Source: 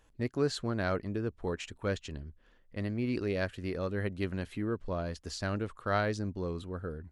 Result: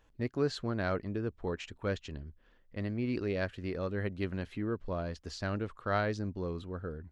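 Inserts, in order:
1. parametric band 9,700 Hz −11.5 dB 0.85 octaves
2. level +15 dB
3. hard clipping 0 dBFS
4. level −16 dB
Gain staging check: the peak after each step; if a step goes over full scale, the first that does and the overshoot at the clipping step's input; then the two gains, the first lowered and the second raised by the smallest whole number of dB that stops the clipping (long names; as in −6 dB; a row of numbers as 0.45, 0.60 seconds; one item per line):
−16.5, −1.5, −1.5, −17.5 dBFS
no step passes full scale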